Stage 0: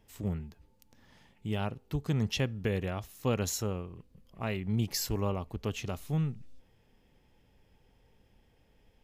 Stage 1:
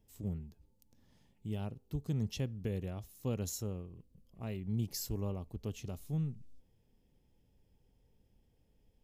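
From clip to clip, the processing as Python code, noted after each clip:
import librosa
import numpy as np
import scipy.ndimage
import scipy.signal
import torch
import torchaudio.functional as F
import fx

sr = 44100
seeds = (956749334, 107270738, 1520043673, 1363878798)

y = fx.peak_eq(x, sr, hz=1600.0, db=-12.0, octaves=2.7)
y = y * librosa.db_to_amplitude(-4.0)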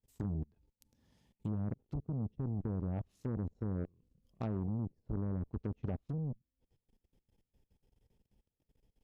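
y = fx.env_lowpass_down(x, sr, base_hz=350.0, full_db=-35.0)
y = fx.level_steps(y, sr, step_db=23)
y = fx.cheby_harmonics(y, sr, harmonics=(7,), levels_db=(-20,), full_scale_db=-36.5)
y = y * librosa.db_to_amplitude(10.5)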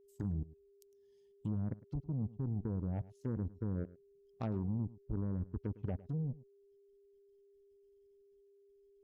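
y = fx.bin_expand(x, sr, power=1.5)
y = y + 10.0 ** (-64.0 / 20.0) * np.sin(2.0 * np.pi * 400.0 * np.arange(len(y)) / sr)
y = y + 10.0 ** (-19.0 / 20.0) * np.pad(y, (int(106 * sr / 1000.0), 0))[:len(y)]
y = y * librosa.db_to_amplitude(1.5)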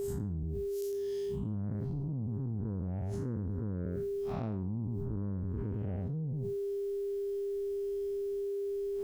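y = fx.spec_blur(x, sr, span_ms=134.0)
y = fx.env_flatten(y, sr, amount_pct=100)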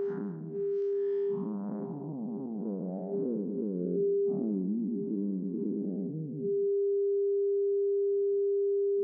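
y = fx.filter_sweep_lowpass(x, sr, from_hz=1500.0, to_hz=330.0, start_s=0.81, end_s=4.18, q=2.1)
y = fx.brickwall_bandpass(y, sr, low_hz=160.0, high_hz=6600.0)
y = y + 10.0 ** (-13.0 / 20.0) * np.pad(y, (int(178 * sr / 1000.0), 0))[:len(y)]
y = y * librosa.db_to_amplitude(3.5)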